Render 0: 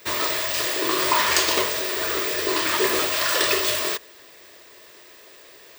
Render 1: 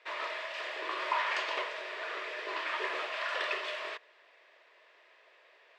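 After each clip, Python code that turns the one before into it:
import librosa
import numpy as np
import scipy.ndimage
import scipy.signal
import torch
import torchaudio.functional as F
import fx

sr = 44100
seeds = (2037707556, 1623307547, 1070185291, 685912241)

y = scipy.signal.sosfilt(scipy.signal.cheby1(2, 1.0, [630.0, 2600.0], 'bandpass', fs=sr, output='sos'), x)
y = y * librosa.db_to_amplitude(-9.0)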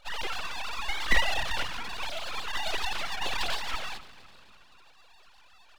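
y = fx.sine_speech(x, sr)
y = fx.echo_feedback(y, sr, ms=255, feedback_pct=47, wet_db=-18.0)
y = np.abs(y)
y = y * librosa.db_to_amplitude(8.0)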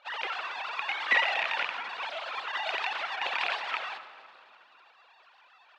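y = fx.rattle_buzz(x, sr, strikes_db=-42.0, level_db=-16.0)
y = fx.bandpass_edges(y, sr, low_hz=610.0, high_hz=2600.0)
y = fx.rev_freeverb(y, sr, rt60_s=2.3, hf_ratio=0.35, predelay_ms=40, drr_db=13.0)
y = y * librosa.db_to_amplitude(3.0)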